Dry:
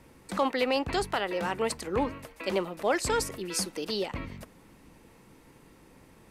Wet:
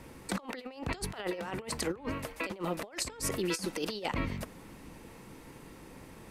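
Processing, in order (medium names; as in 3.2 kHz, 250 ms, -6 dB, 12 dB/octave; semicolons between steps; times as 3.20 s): compressor with a negative ratio -35 dBFS, ratio -0.5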